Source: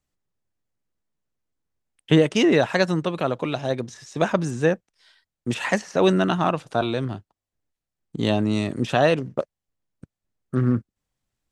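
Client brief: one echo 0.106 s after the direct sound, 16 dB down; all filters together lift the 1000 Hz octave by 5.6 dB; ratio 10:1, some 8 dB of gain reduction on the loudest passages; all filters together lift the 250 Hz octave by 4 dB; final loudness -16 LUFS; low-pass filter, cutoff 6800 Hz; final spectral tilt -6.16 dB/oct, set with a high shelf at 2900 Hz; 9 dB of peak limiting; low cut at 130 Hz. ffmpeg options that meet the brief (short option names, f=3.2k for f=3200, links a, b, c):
-af "highpass=130,lowpass=6.8k,equalizer=f=250:t=o:g=5.5,equalizer=f=1k:t=o:g=8.5,highshelf=f=2.9k:g=-7,acompressor=threshold=-18dB:ratio=10,alimiter=limit=-16dB:level=0:latency=1,aecho=1:1:106:0.158,volume=11.5dB"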